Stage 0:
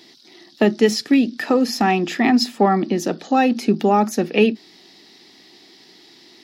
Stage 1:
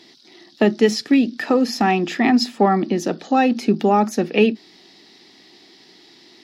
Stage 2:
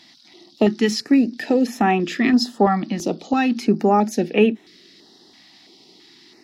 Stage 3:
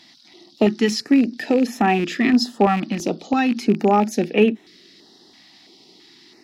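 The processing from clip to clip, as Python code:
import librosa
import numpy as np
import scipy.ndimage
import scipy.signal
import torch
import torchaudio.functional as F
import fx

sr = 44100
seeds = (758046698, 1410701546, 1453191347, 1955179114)

y1 = fx.high_shelf(x, sr, hz=11000.0, db=-10.0)
y2 = fx.filter_held_notch(y1, sr, hz=3.0, low_hz=410.0, high_hz=4700.0)
y3 = fx.rattle_buzz(y2, sr, strikes_db=-24.0, level_db=-21.0)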